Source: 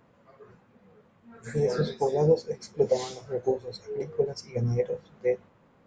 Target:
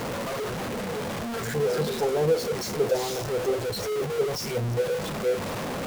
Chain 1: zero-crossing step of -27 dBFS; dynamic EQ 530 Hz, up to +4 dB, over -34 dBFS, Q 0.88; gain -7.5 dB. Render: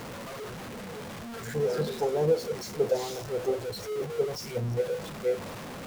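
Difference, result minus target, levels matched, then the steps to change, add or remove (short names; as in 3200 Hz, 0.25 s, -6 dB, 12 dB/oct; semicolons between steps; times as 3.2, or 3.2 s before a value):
zero-crossing step: distortion -5 dB
change: zero-crossing step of -19.5 dBFS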